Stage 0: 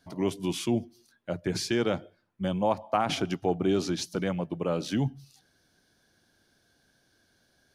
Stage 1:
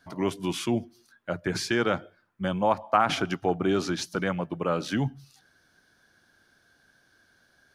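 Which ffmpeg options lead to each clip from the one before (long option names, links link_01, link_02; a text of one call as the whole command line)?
ffmpeg -i in.wav -af "equalizer=frequency=1400:width_type=o:width=1.2:gain=9" out.wav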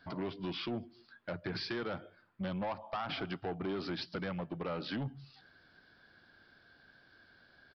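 ffmpeg -i in.wav -af "acompressor=threshold=-35dB:ratio=2.5,aresample=11025,asoftclip=type=tanh:threshold=-32.5dB,aresample=44100,volume=1dB" out.wav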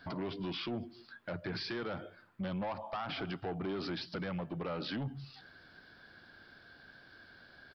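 ffmpeg -i in.wav -af "alimiter=level_in=14dB:limit=-24dB:level=0:latency=1:release=46,volume=-14dB,volume=5.5dB" out.wav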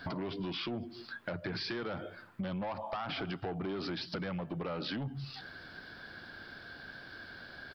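ffmpeg -i in.wav -af "acompressor=threshold=-45dB:ratio=4,volume=8.5dB" out.wav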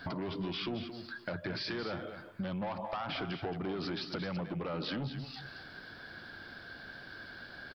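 ffmpeg -i in.wav -af "aecho=1:1:223:0.335" out.wav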